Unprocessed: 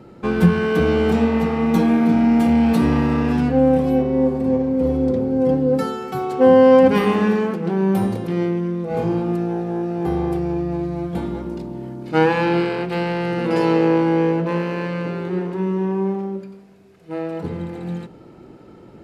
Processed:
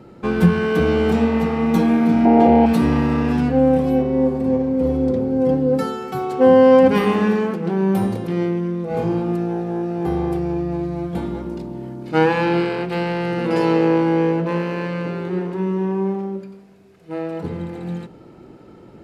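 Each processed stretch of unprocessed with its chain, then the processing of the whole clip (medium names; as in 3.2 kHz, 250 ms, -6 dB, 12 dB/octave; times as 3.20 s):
2.25–2.66 s: low-pass 3.9 kHz + high-order bell 540 Hz +12 dB
whole clip: none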